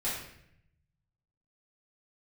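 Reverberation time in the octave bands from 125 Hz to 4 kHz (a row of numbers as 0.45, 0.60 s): 1.6, 1.0, 0.75, 0.65, 0.80, 0.60 s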